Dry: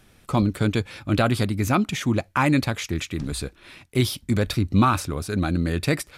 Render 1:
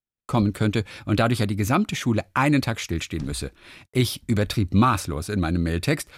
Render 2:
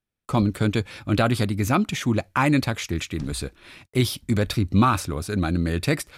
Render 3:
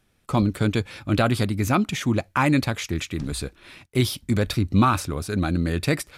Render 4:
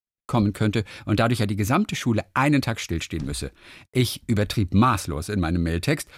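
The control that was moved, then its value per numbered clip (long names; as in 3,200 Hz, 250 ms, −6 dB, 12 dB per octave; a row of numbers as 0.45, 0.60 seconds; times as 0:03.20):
noise gate, range: −44, −32, −11, −57 decibels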